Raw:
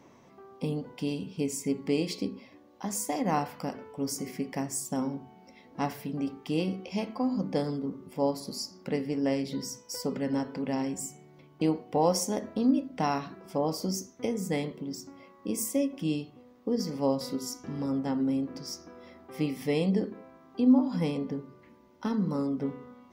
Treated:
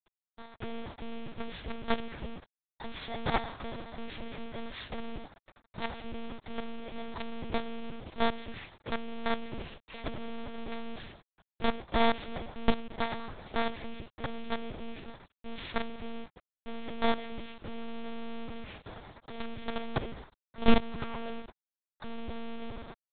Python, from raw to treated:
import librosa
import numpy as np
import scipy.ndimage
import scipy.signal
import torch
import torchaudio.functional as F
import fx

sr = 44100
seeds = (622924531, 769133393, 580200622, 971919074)

p1 = fx.bit_reversed(x, sr, seeds[0], block=16)
p2 = fx.spec_paint(p1, sr, seeds[1], shape='fall', start_s=20.99, length_s=0.42, low_hz=370.0, high_hz=1600.0, level_db=-39.0)
p3 = fx.dynamic_eq(p2, sr, hz=1300.0, q=2.0, threshold_db=-53.0, ratio=4.0, max_db=3)
p4 = fx.rider(p3, sr, range_db=3, speed_s=2.0)
p5 = p3 + (p4 * librosa.db_to_amplitude(-0.5))
p6 = fx.quant_companded(p5, sr, bits=2)
p7 = fx.lpc_monotone(p6, sr, seeds[2], pitch_hz=230.0, order=8)
p8 = fx.low_shelf(p7, sr, hz=420.0, db=-3.5)
y = p8 * librosa.db_to_amplitude(-8.0)